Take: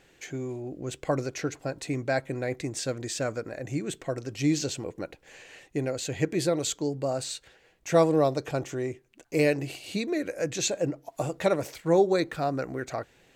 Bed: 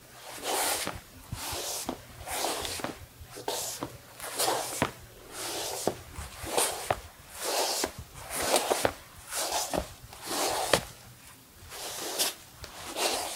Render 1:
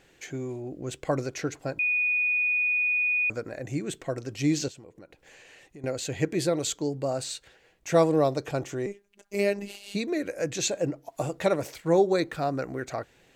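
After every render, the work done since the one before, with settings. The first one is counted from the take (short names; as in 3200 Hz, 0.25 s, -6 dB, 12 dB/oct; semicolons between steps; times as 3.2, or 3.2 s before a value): 1.79–3.3 bleep 2470 Hz -22 dBFS; 4.68–5.84 compressor 3:1, threshold -49 dBFS; 8.86–9.95 robotiser 201 Hz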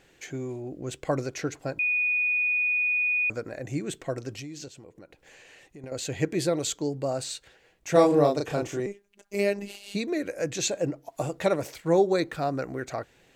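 4.39–5.92 compressor 12:1, threshold -36 dBFS; 7.92–8.8 doubler 34 ms -2.5 dB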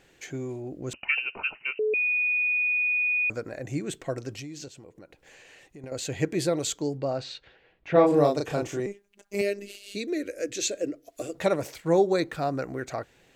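0.93–1.94 inverted band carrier 2900 Hz; 6.97–8.06 LPF 5500 Hz -> 3000 Hz 24 dB/oct; 9.41–11.35 fixed phaser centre 370 Hz, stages 4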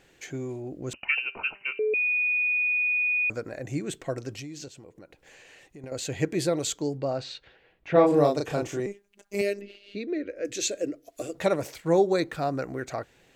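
1.19–1.95 de-hum 197.5 Hz, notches 12; 9.61–10.45 air absorption 290 m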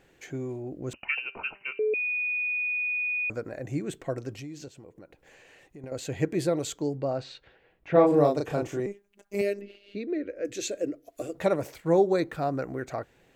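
bell 5500 Hz -6.5 dB 2.6 oct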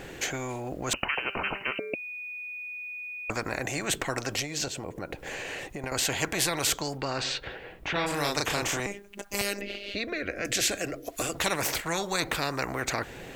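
spectral compressor 4:1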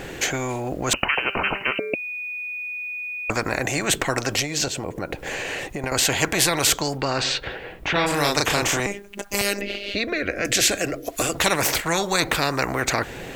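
gain +7.5 dB; limiter -2 dBFS, peak gain reduction 2 dB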